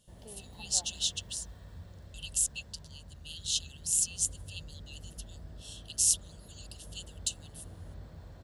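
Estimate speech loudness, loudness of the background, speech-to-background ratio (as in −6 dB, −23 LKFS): −30.5 LKFS, −50.5 LKFS, 20.0 dB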